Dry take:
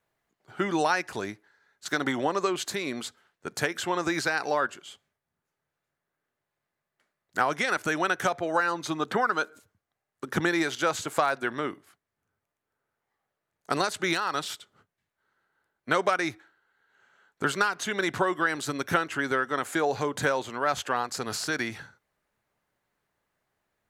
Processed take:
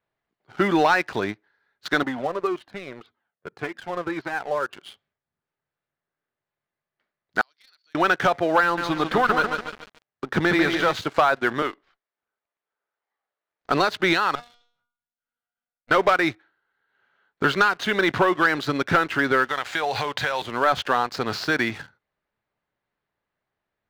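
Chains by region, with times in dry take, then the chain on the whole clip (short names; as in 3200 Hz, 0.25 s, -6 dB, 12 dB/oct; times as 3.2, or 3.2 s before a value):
2.03–4.73 HPF 170 Hz 6 dB/oct + tape spacing loss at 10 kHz 34 dB + cascading flanger falling 1.8 Hz
7.41–7.95 band-pass 4500 Hz, Q 17 + compressor 1.5:1, threshold -50 dBFS
8.63–10.93 tube stage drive 14 dB, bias 0.5 + lo-fi delay 0.144 s, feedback 55%, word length 7-bit, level -5.5 dB
11.62–13.7 HPF 440 Hz + running maximum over 3 samples
14.35–15.91 minimum comb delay 1.4 ms + resonator 240 Hz, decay 0.51 s, mix 90%
19.48–20.42 EQ curve 100 Hz 0 dB, 220 Hz -9 dB, 330 Hz -8 dB, 770 Hz +4 dB, 1200 Hz +2 dB, 2700 Hz +9 dB + compressor 5:1, threshold -28 dBFS
whole clip: LPF 4500 Hz 24 dB/oct; sample leveller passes 2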